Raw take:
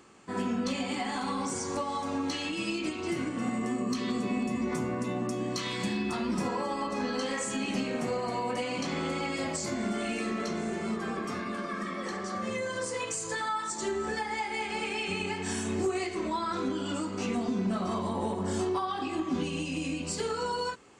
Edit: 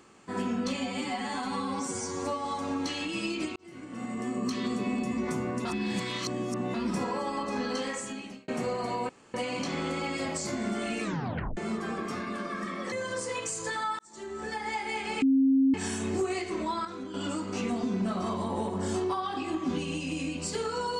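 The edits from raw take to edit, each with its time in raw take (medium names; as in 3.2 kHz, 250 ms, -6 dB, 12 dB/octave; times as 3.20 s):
0.77–1.89 s: stretch 1.5×
3.00–3.87 s: fade in
5.09–6.18 s: reverse
7.23–7.92 s: fade out
8.53 s: insert room tone 0.25 s
10.22 s: tape stop 0.54 s
12.11–12.57 s: delete
13.64–14.35 s: fade in
14.87–15.39 s: bleep 268 Hz -19 dBFS
16.50–16.79 s: gain -8 dB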